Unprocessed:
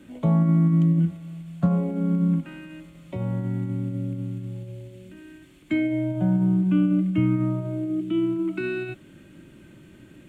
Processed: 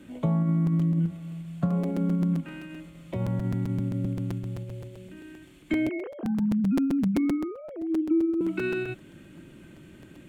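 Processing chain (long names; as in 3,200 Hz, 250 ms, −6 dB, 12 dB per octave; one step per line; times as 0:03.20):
0:05.89–0:08.41: three sine waves on the formant tracks
downward compressor 4 to 1, threshold −22 dBFS, peak gain reduction 8.5 dB
regular buffer underruns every 0.13 s, samples 256, repeat, from 0:00.66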